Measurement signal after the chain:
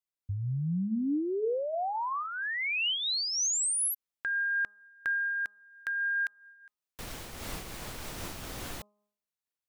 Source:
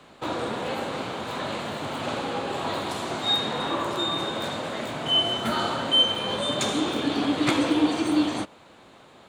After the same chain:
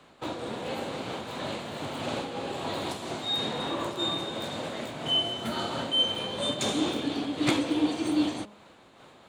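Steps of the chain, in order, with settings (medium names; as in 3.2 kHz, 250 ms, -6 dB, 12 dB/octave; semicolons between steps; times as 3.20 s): de-hum 207.3 Hz, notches 6; dynamic bell 1.3 kHz, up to -5 dB, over -38 dBFS, Q 1.1; random flutter of the level, depth 60%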